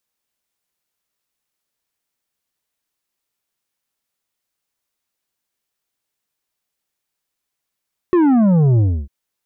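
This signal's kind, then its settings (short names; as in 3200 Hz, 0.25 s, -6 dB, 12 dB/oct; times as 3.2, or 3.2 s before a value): sub drop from 370 Hz, over 0.95 s, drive 8 dB, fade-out 0.29 s, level -11 dB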